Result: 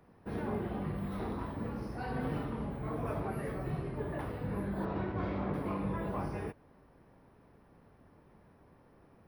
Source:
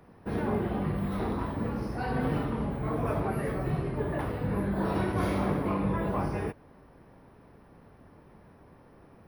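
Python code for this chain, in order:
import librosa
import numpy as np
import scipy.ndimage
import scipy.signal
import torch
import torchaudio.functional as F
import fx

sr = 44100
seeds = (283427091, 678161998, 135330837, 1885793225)

y = fx.air_absorb(x, sr, metres=250.0, at=(4.85, 5.54))
y = y * 10.0 ** (-6.5 / 20.0)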